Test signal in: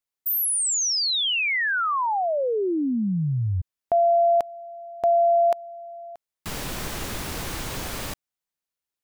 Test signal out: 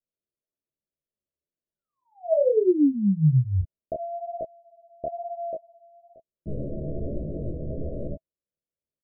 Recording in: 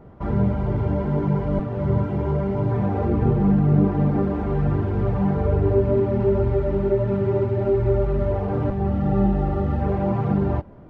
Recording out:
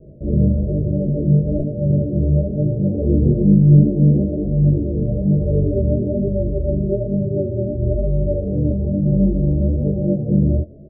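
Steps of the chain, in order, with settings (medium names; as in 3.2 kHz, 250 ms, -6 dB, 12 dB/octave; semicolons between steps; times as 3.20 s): Chebyshev low-pass 650 Hz, order 8; doubling 14 ms -2.5 dB; chorus 1.1 Hz, delay 19 ms, depth 7.7 ms; trim +5 dB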